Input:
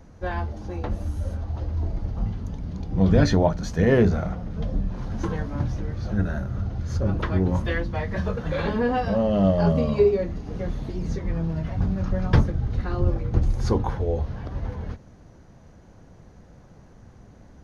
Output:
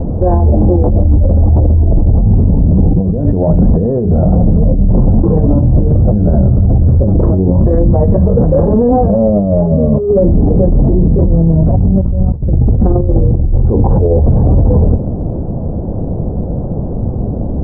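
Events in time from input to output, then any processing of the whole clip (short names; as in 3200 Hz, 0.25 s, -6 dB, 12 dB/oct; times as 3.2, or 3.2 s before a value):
12.02–12.53 bell 66 Hz +14 dB
whole clip: inverse Chebyshev low-pass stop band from 3900 Hz, stop band 80 dB; negative-ratio compressor -31 dBFS, ratio -1; maximiser +27 dB; gain -1 dB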